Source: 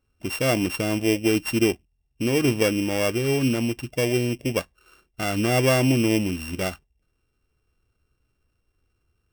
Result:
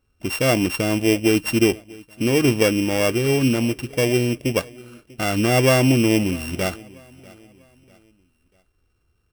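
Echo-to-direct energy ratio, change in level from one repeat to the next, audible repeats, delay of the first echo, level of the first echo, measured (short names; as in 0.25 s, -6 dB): -22.5 dB, -8.0 dB, 2, 0.643 s, -23.0 dB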